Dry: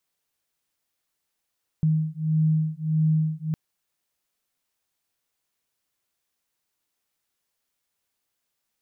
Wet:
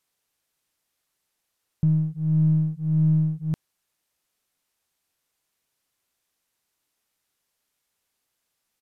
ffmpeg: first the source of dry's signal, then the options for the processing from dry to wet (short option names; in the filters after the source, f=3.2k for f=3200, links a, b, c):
-f lavfi -i "aevalsrc='0.0708*(sin(2*PI*156*t)+sin(2*PI*157.6*t))':d=1.71:s=44100"
-filter_complex "[0:a]asplit=2[a][b];[b]aeval=exprs='clip(val(0),-1,0.00944)':c=same,volume=-8dB[c];[a][c]amix=inputs=2:normalize=0,aresample=32000,aresample=44100"